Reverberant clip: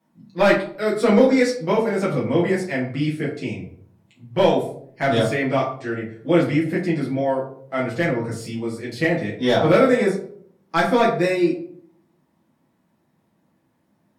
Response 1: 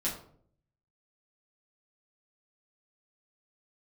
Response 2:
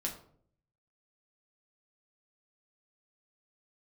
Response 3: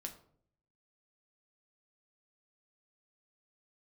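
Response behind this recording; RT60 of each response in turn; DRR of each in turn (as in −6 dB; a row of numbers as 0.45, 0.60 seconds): 1; 0.60, 0.60, 0.60 seconds; −7.0, −0.5, 3.5 decibels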